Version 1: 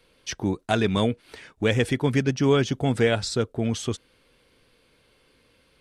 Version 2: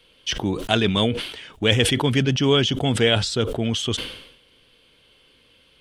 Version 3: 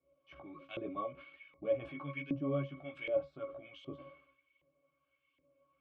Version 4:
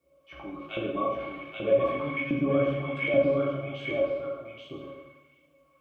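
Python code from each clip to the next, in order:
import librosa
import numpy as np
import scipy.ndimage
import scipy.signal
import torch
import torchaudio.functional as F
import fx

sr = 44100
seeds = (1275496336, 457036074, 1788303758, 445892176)

y1 = fx.peak_eq(x, sr, hz=3100.0, db=13.0, octaves=0.42)
y1 = fx.sustainer(y1, sr, db_per_s=71.0)
y1 = F.gain(torch.from_numpy(y1), 1.0).numpy()
y2 = fx.octave_resonator(y1, sr, note='C#', decay_s=0.17)
y2 = fx.chorus_voices(y2, sr, voices=4, hz=0.65, base_ms=16, depth_ms=3.8, mix_pct=45)
y2 = fx.filter_lfo_bandpass(y2, sr, shape='saw_up', hz=1.3, low_hz=440.0, high_hz=3000.0, q=1.5)
y2 = F.gain(torch.from_numpy(y2), 6.5).numpy()
y3 = y2 + 10.0 ** (-3.5 / 20.0) * np.pad(y2, (int(831 * sr / 1000.0), 0))[:len(y2)]
y3 = fx.rev_plate(y3, sr, seeds[0], rt60_s=1.1, hf_ratio=0.8, predelay_ms=0, drr_db=-1.0)
y3 = F.gain(torch.from_numpy(y3), 8.0).numpy()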